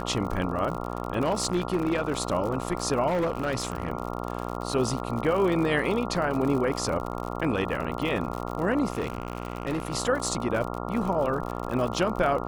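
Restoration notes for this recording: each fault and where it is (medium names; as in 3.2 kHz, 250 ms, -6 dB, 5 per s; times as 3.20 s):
buzz 60 Hz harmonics 23 -33 dBFS
crackle 60 per s -31 dBFS
1.23–2.17 s: clipped -19.5 dBFS
3.07–3.90 s: clipped -22 dBFS
8.92–9.93 s: clipped -24 dBFS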